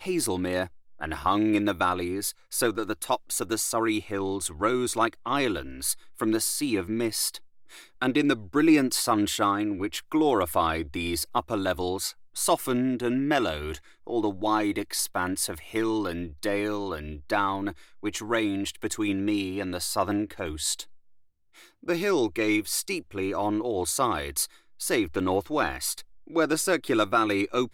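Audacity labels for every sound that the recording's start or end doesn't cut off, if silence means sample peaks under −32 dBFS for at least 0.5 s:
8.020000	20.820000	sound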